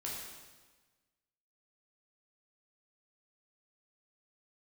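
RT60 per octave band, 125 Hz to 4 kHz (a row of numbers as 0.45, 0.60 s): 1.5, 1.4, 1.3, 1.3, 1.3, 1.2 s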